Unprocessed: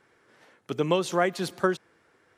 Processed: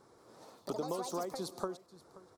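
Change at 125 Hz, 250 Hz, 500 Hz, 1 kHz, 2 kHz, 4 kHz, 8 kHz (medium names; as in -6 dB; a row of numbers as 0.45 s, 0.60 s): -15.0 dB, -12.0 dB, -12.0 dB, -11.0 dB, -24.0 dB, -12.0 dB, -6.0 dB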